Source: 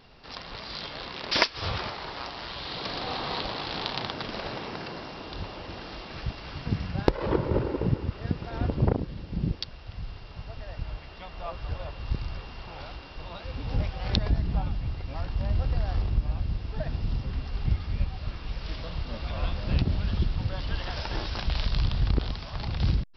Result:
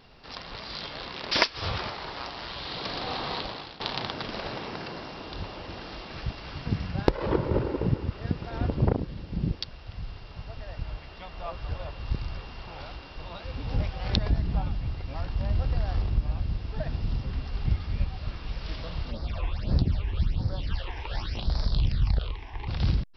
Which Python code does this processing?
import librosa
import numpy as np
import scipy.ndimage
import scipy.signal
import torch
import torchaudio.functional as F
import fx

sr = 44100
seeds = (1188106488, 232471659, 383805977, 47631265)

y = fx.phaser_stages(x, sr, stages=8, low_hz=170.0, high_hz=2800.0, hz=fx.line((19.1, 2.2), (22.67, 0.41)), feedback_pct=25, at=(19.1, 22.67), fade=0.02)
y = fx.edit(y, sr, fx.fade_out_to(start_s=3.16, length_s=0.64, curve='qsin', floor_db=-19.0), tone=tone)